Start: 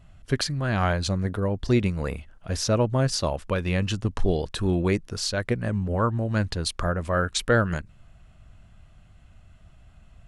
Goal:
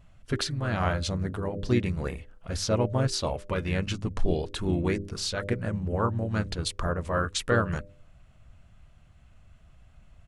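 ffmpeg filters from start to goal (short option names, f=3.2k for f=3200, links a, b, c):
-filter_complex "[0:a]bandreject=f=99.51:t=h:w=4,bandreject=f=199.02:t=h:w=4,bandreject=f=298.53:t=h:w=4,bandreject=f=398.04:t=h:w=4,bandreject=f=497.55:t=h:w=4,bandreject=f=597.06:t=h:w=4,asplit=2[a][b];[b]asetrate=37084,aresample=44100,atempo=1.18921,volume=-6dB[c];[a][c]amix=inputs=2:normalize=0,volume=-4dB"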